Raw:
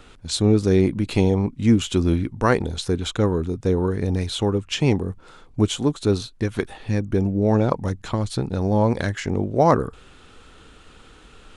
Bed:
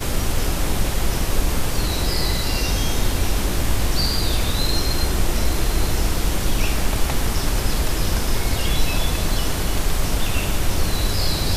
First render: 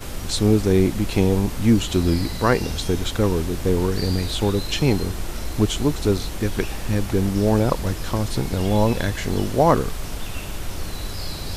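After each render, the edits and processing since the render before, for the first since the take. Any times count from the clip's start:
mix in bed −9 dB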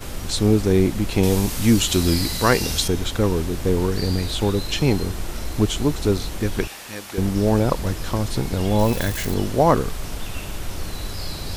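0:01.23–0:02.88: high-shelf EQ 2,700 Hz +10.5 dB
0:06.67–0:07.18: high-pass filter 1,100 Hz 6 dB per octave
0:08.79–0:09.34: spike at every zero crossing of −24 dBFS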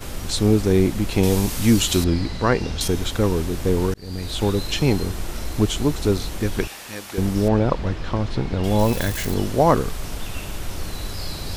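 0:02.04–0:02.81: head-to-tape spacing loss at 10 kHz 23 dB
0:03.94–0:04.44: fade in
0:07.48–0:08.64: low-pass filter 3,500 Hz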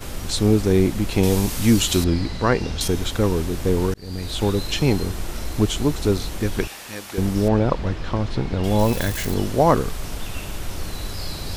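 no processing that can be heard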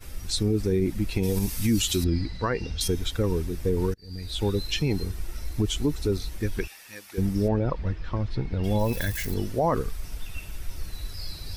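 spectral dynamics exaggerated over time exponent 1.5
brickwall limiter −15 dBFS, peak gain reduction 8.5 dB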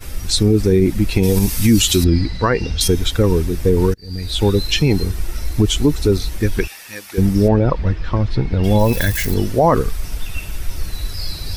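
level +10.5 dB

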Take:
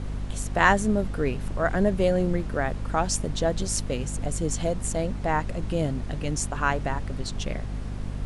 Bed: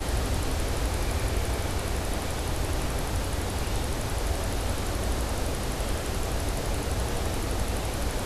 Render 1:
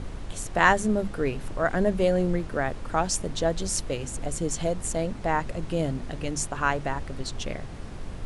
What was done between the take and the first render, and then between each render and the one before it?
mains-hum notches 50/100/150/200/250 Hz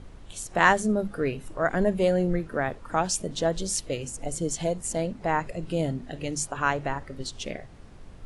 noise reduction from a noise print 10 dB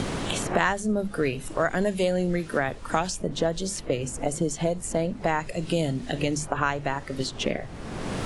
multiband upward and downward compressor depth 100%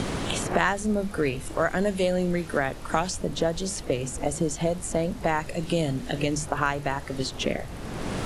mix in bed −14.5 dB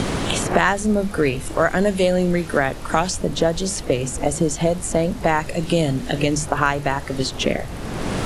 level +6.5 dB
brickwall limiter −2 dBFS, peak gain reduction 2 dB

